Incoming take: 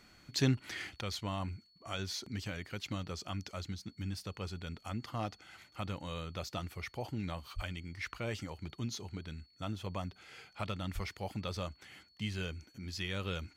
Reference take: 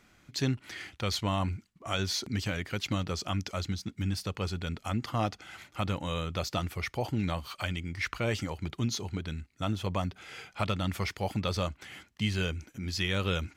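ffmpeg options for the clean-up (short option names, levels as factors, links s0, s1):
-filter_complex "[0:a]bandreject=f=4400:w=30,asplit=3[s0][s1][s2];[s0]afade=t=out:st=7.55:d=0.02[s3];[s1]highpass=f=140:w=0.5412,highpass=f=140:w=1.3066,afade=t=in:st=7.55:d=0.02,afade=t=out:st=7.67:d=0.02[s4];[s2]afade=t=in:st=7.67:d=0.02[s5];[s3][s4][s5]amix=inputs=3:normalize=0,asplit=3[s6][s7][s8];[s6]afade=t=out:st=10.94:d=0.02[s9];[s7]highpass=f=140:w=0.5412,highpass=f=140:w=1.3066,afade=t=in:st=10.94:d=0.02,afade=t=out:st=11.06:d=0.02[s10];[s8]afade=t=in:st=11.06:d=0.02[s11];[s9][s10][s11]amix=inputs=3:normalize=0,asetnsamples=n=441:p=0,asendcmd='1.01 volume volume 8dB',volume=1"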